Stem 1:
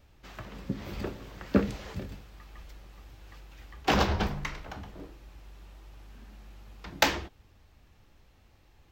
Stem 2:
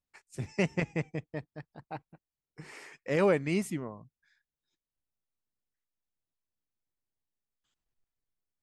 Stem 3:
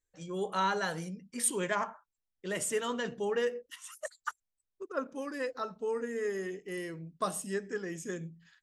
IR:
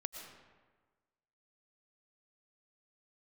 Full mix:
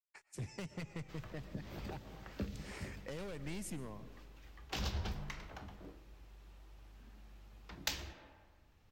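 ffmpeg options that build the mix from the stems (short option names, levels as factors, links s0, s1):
-filter_complex "[0:a]adelay=850,volume=0.316,asplit=2[s0][s1];[s1]volume=0.355[s2];[1:a]agate=range=0.0224:threshold=0.00141:ratio=3:detection=peak,acompressor=threshold=0.0355:ratio=6,volume=44.7,asoftclip=hard,volume=0.0224,volume=0.596,asplit=2[s3][s4];[s4]volume=0.501[s5];[3:a]atrim=start_sample=2205[s6];[s2][s5]amix=inputs=2:normalize=0[s7];[s7][s6]afir=irnorm=-1:irlink=0[s8];[s0][s3][s8]amix=inputs=3:normalize=0,acrossover=split=140|3000[s9][s10][s11];[s10]acompressor=threshold=0.00631:ratio=6[s12];[s9][s12][s11]amix=inputs=3:normalize=0"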